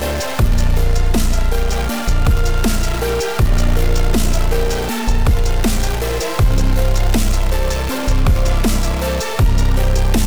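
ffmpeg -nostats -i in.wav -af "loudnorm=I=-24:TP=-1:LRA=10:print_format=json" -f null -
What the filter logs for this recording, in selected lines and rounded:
"input_i" : "-17.9",
"input_tp" : "-5.2",
"input_lra" : "0.4",
"input_thresh" : "-27.9",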